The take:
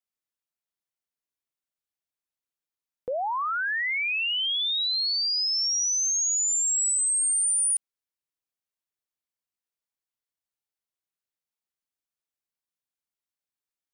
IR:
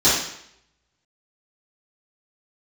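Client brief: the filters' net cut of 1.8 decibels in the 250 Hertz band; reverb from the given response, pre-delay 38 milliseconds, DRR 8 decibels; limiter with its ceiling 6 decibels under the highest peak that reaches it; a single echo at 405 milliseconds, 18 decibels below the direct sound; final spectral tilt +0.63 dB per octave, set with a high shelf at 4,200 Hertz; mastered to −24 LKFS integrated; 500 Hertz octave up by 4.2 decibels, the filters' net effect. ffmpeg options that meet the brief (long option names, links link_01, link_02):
-filter_complex "[0:a]equalizer=frequency=250:width_type=o:gain=-6,equalizer=frequency=500:width_type=o:gain=6,highshelf=frequency=4200:gain=7.5,alimiter=limit=-20dB:level=0:latency=1,aecho=1:1:405:0.126,asplit=2[link_01][link_02];[1:a]atrim=start_sample=2205,adelay=38[link_03];[link_02][link_03]afir=irnorm=-1:irlink=0,volume=-28dB[link_04];[link_01][link_04]amix=inputs=2:normalize=0,volume=-4dB"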